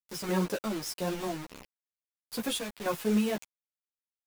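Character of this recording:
sample-and-hold tremolo, depth 70%
a quantiser's noise floor 6 bits, dither none
a shimmering, thickened sound

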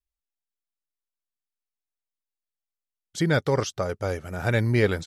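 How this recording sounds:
background noise floor −89 dBFS
spectral slope −5.5 dB per octave

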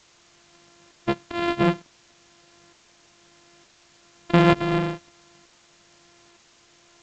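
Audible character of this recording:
a buzz of ramps at a fixed pitch in blocks of 128 samples
tremolo saw up 1.1 Hz, depth 85%
a quantiser's noise floor 10 bits, dither triangular
G.722

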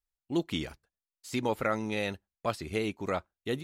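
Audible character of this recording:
background noise floor −94 dBFS
spectral slope −4.0 dB per octave

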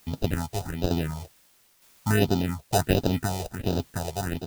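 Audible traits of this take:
aliases and images of a low sample rate 1,100 Hz, jitter 0%
phaser sweep stages 4, 1.4 Hz, lowest notch 240–2,000 Hz
a quantiser's noise floor 10 bits, dither triangular
tremolo saw down 1.1 Hz, depth 50%

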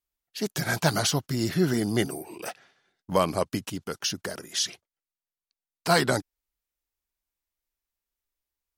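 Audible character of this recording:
background noise floor −94 dBFS
spectral slope −4.0 dB per octave

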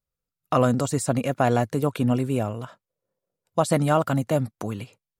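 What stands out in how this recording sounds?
background noise floor −89 dBFS
spectral slope −6.0 dB per octave

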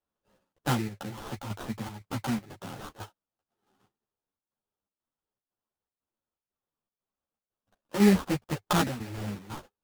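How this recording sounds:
chopped level 2 Hz, depth 60%, duty 75%
aliases and images of a low sample rate 2,200 Hz, jitter 20%
a shimmering, thickened sound

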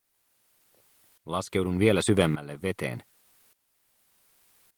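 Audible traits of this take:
a quantiser's noise floor 10 bits, dither triangular
tremolo saw up 0.85 Hz, depth 85%
Opus

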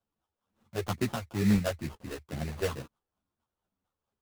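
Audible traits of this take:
phaser sweep stages 4, 2.2 Hz, lowest notch 200–1,600 Hz
aliases and images of a low sample rate 2,200 Hz, jitter 20%
a shimmering, thickened sound

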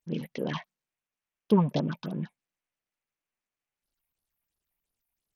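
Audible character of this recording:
phaser sweep stages 6, 2.9 Hz, lowest notch 330–2,500 Hz
SBC

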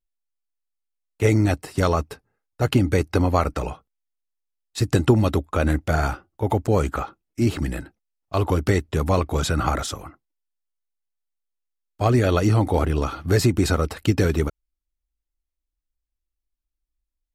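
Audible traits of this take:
background noise floor −83 dBFS
spectral slope −6.5 dB per octave

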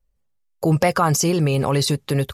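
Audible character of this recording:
background noise floor −68 dBFS
spectral slope −5.0 dB per octave

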